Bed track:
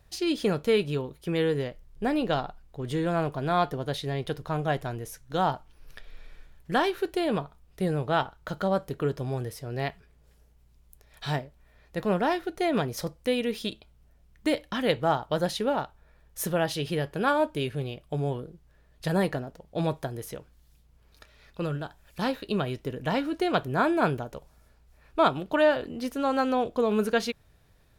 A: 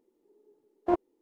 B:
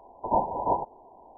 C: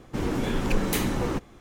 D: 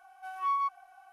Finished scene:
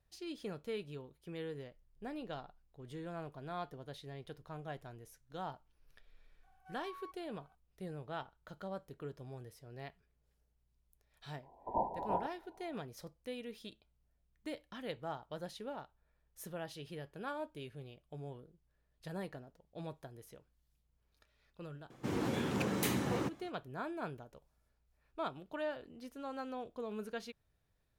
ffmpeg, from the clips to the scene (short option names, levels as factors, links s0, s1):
-filter_complex "[0:a]volume=0.133[s0];[4:a]acompressor=threshold=0.02:ratio=6:attack=3.2:release=140:knee=1:detection=peak[s1];[3:a]highpass=f=91:w=0.5412,highpass=f=91:w=1.3066[s2];[s1]atrim=end=1.12,asetpts=PTS-STARTPTS,volume=0.168,afade=t=in:d=0.004:c=hsin,afade=t=out:st=1.116:d=0.004:c=hsin,adelay=6430[s3];[2:a]atrim=end=1.37,asetpts=PTS-STARTPTS,volume=0.299,afade=t=in:d=0.004:c=hsin,afade=t=out:st=1.366:d=0.004:c=hsin,adelay=11430[s4];[s2]atrim=end=1.6,asetpts=PTS-STARTPTS,volume=0.422,afade=t=in:d=0.004:c=hsin,afade=t=out:st=1.596:d=0.004:c=hsin,adelay=21900[s5];[s0][s3][s4][s5]amix=inputs=4:normalize=0"